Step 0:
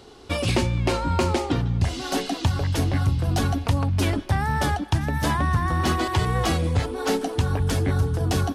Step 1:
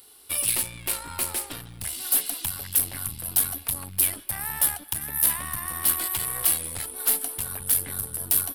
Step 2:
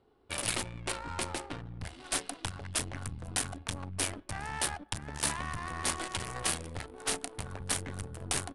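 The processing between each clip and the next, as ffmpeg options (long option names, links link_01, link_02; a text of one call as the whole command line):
ffmpeg -i in.wav -af "aeval=exprs='(tanh(7.94*val(0)+0.8)-tanh(0.8))/7.94':channel_layout=same,tiltshelf=frequency=1200:gain=-9,aexciter=amount=11.2:drive=8.7:freq=9400,volume=-6dB" out.wav
ffmpeg -i in.wav -af "adynamicsmooth=sensitivity=5:basefreq=780,aresample=22050,aresample=44100" out.wav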